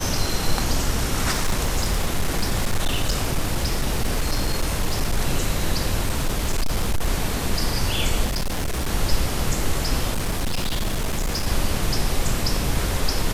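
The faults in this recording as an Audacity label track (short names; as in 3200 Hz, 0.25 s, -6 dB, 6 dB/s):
1.310000	5.190000	clipped -16 dBFS
6.030000	7.080000	clipped -16.5 dBFS
8.250000	8.890000	clipped -20.5 dBFS
10.130000	11.470000	clipped -19.5 dBFS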